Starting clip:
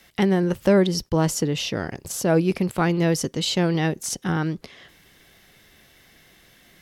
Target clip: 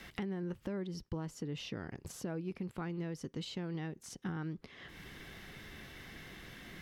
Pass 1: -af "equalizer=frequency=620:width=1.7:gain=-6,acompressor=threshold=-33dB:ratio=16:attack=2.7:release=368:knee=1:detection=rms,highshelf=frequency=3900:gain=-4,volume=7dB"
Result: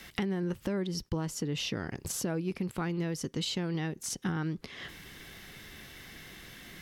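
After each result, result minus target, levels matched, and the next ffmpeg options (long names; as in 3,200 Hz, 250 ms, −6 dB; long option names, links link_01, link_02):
downward compressor: peak gain reduction −6.5 dB; 8,000 Hz band +5.0 dB
-af "equalizer=frequency=620:width=1.7:gain=-6,acompressor=threshold=-40dB:ratio=16:attack=2.7:release=368:knee=1:detection=rms,highshelf=frequency=3900:gain=-4,volume=7dB"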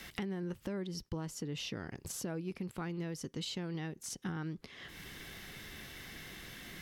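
8,000 Hz band +6.5 dB
-af "equalizer=frequency=620:width=1.7:gain=-6,acompressor=threshold=-40dB:ratio=16:attack=2.7:release=368:knee=1:detection=rms,highshelf=frequency=3900:gain=-13.5,volume=7dB"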